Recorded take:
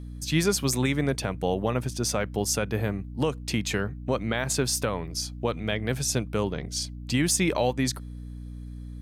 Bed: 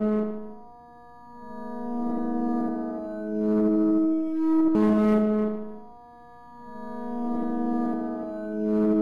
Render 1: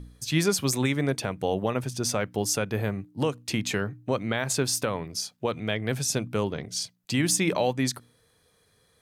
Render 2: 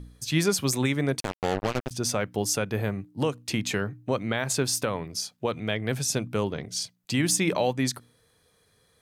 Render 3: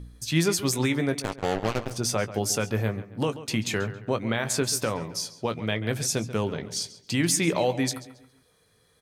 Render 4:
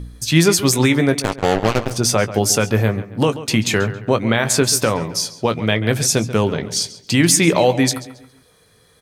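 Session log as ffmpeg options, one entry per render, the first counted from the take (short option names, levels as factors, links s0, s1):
-af "bandreject=f=60:t=h:w=4,bandreject=f=120:t=h:w=4,bandreject=f=180:t=h:w=4,bandreject=f=240:t=h:w=4,bandreject=f=300:t=h:w=4"
-filter_complex "[0:a]asettb=1/sr,asplit=3[s0][s1][s2];[s0]atrim=end=1.204[s3];[s1]atrim=start=1.2:end=1.91,asetpts=PTS-STARTPTS,afade=t=in:d=0.004:c=qsin,afade=t=out:st=0.706:d=0.004:c=qsin,acrusher=bits=3:mix=0:aa=0.5[s4];[s2]atrim=start=1.906[s5];[s3][s4]acrossfade=d=0.004:c1=hsin:c2=qsin[s6];[s6][s5]acrossfade=d=0.004:c1=qsin:c2=hsin"
-filter_complex "[0:a]asplit=2[s0][s1];[s1]adelay=18,volume=0.299[s2];[s0][s2]amix=inputs=2:normalize=0,asplit=2[s3][s4];[s4]adelay=137,lowpass=f=3900:p=1,volume=0.2,asplit=2[s5][s6];[s6]adelay=137,lowpass=f=3900:p=1,volume=0.4,asplit=2[s7][s8];[s8]adelay=137,lowpass=f=3900:p=1,volume=0.4,asplit=2[s9][s10];[s10]adelay=137,lowpass=f=3900:p=1,volume=0.4[s11];[s3][s5][s7][s9][s11]amix=inputs=5:normalize=0"
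-af "volume=3.16,alimiter=limit=0.794:level=0:latency=1"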